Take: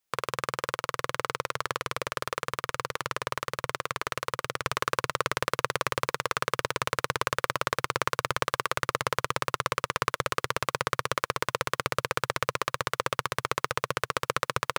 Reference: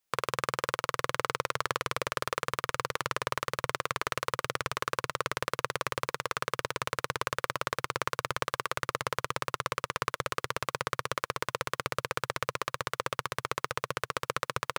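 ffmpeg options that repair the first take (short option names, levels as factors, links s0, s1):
-af "asetnsamples=n=441:p=0,asendcmd='4.65 volume volume -4dB',volume=1"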